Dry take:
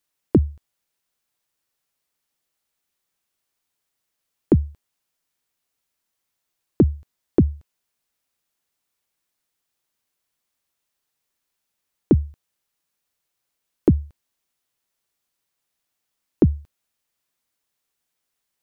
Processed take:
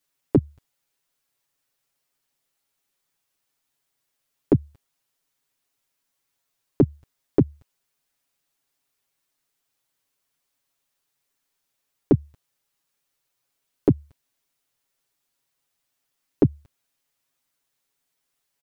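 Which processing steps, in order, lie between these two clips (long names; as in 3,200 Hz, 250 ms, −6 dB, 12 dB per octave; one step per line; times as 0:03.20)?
comb filter 7.3 ms, depth 95%
downward compressor, threshold −11 dBFS, peak gain reduction 4.5 dB
level −1.5 dB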